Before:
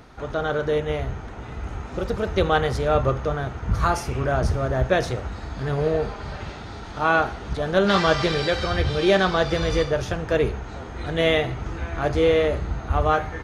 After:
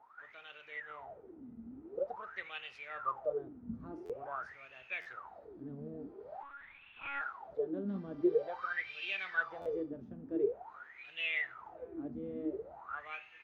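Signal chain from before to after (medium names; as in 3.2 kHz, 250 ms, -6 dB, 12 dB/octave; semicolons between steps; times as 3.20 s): wah-wah 0.47 Hz 230–2700 Hz, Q 20; 6.43–7.21 s: monotone LPC vocoder at 8 kHz 280 Hz; buffer glitch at 4.05/5.01/9.61 s, samples 512, times 3; trim +3 dB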